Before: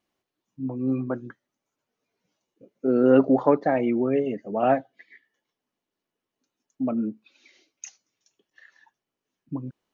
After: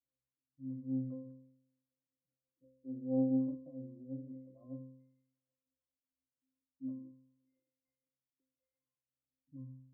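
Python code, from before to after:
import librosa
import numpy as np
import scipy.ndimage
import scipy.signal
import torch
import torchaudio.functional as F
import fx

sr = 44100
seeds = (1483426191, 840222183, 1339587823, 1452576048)

y = fx.law_mismatch(x, sr, coded='mu')
y = fx.env_lowpass_down(y, sr, base_hz=450.0, full_db=-17.5)
y = fx.echo_wet_highpass(y, sr, ms=395, feedback_pct=60, hz=1600.0, wet_db=-24.0)
y = fx.rotary(y, sr, hz=6.7)
y = fx.octave_resonator(y, sr, note='C', decay_s=0.75)
y = fx.env_lowpass(y, sr, base_hz=550.0, full_db=-18.5)
y = fx.doppler_dist(y, sr, depth_ms=0.13)
y = y * librosa.db_to_amplitude(-5.0)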